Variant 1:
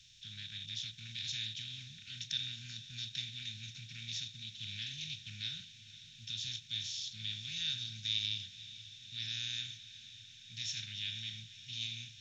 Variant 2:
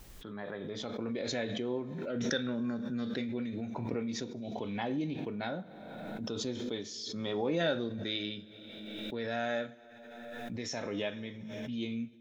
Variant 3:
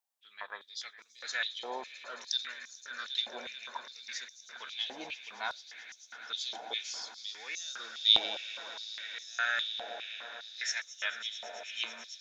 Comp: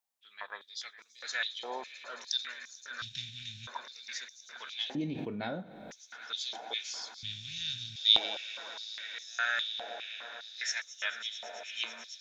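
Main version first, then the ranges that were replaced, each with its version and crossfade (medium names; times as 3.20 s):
3
3.02–3.67 s: from 1
4.95–5.91 s: from 2
7.23–7.96 s: from 1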